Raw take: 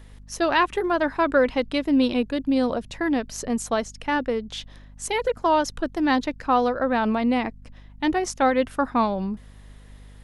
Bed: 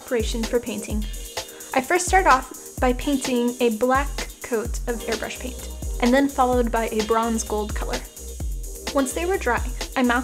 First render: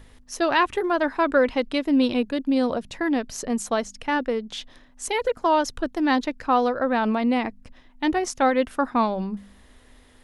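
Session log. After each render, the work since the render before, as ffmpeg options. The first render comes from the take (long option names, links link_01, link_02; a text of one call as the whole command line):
ffmpeg -i in.wav -af "bandreject=frequency=50:width_type=h:width=4,bandreject=frequency=100:width_type=h:width=4,bandreject=frequency=150:width_type=h:width=4,bandreject=frequency=200:width_type=h:width=4" out.wav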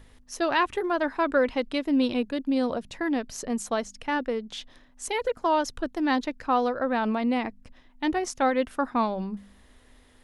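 ffmpeg -i in.wav -af "volume=-3.5dB" out.wav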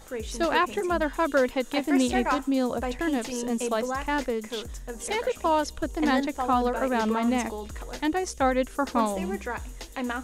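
ffmpeg -i in.wav -i bed.wav -filter_complex "[1:a]volume=-11dB[link_01];[0:a][link_01]amix=inputs=2:normalize=0" out.wav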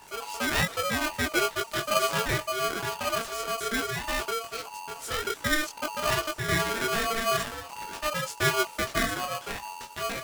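ffmpeg -i in.wav -af "flanger=delay=19.5:depth=4.9:speed=2.4,aeval=exprs='val(0)*sgn(sin(2*PI*910*n/s))':channel_layout=same" out.wav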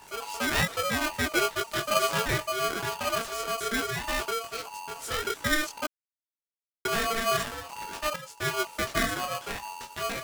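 ffmpeg -i in.wav -filter_complex "[0:a]asplit=4[link_01][link_02][link_03][link_04];[link_01]atrim=end=5.87,asetpts=PTS-STARTPTS,afade=type=out:start_time=5.866:duration=0.004:curve=hsin[link_05];[link_02]atrim=start=5.87:end=6.85,asetpts=PTS-STARTPTS,volume=0[link_06];[link_03]atrim=start=6.85:end=8.16,asetpts=PTS-STARTPTS,afade=type=in:duration=0.004:curve=hsin,afade=type=out:start_time=1.306:duration=0.004:curve=hsin:silence=0.199526[link_07];[link_04]atrim=start=8.16,asetpts=PTS-STARTPTS,afade=type=in:duration=0.71:silence=0.199526[link_08];[link_05][link_06][link_07][link_08]concat=n=4:v=0:a=1" out.wav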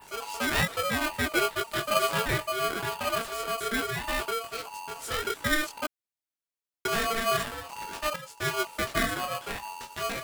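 ffmpeg -i in.wav -af "adynamicequalizer=threshold=0.00316:dfrequency=6000:dqfactor=2.4:tfrequency=6000:tqfactor=2.4:attack=5:release=100:ratio=0.375:range=3:mode=cutabove:tftype=bell" out.wav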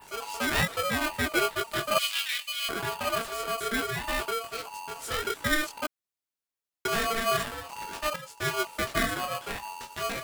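ffmpeg -i in.wav -filter_complex "[0:a]asettb=1/sr,asplit=3[link_01][link_02][link_03];[link_01]atrim=end=1.984[link_04];[link_02]atrim=start=1.98:end=2.69,asetpts=PTS-STARTPTS,afade=type=in:duration=0.004:curve=qsin,afade=type=out:start_time=0.706:duration=0.004:curve=qsin,highpass=frequency=2900:width_type=q:width=2[link_05];[link_03]atrim=start=2.686[link_06];[link_04][link_05]acrossfade=duration=0.004:curve1=hsin:curve2=qsin[link_07];[link_07][link_06]acrossfade=duration=0.004:curve1=qsin:curve2=hsin" out.wav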